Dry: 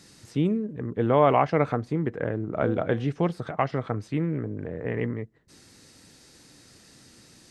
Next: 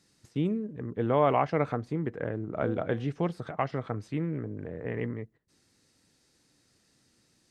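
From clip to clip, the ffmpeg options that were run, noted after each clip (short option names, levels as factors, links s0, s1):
-af "agate=range=0.316:threshold=0.00447:ratio=16:detection=peak,volume=0.596"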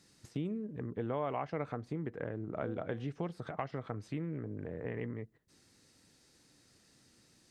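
-af "acompressor=threshold=0.00891:ratio=2.5,volume=1.26"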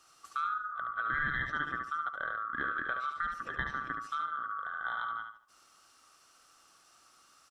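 -filter_complex "[0:a]afftfilt=real='real(if(lt(b,960),b+48*(1-2*mod(floor(b/48),2)),b),0)':imag='imag(if(lt(b,960),b+48*(1-2*mod(floor(b/48),2)),b),0)':win_size=2048:overlap=0.75,asplit=2[s0][s1];[s1]aecho=0:1:72|144|216|288:0.501|0.14|0.0393|0.011[s2];[s0][s2]amix=inputs=2:normalize=0,volume=1.26"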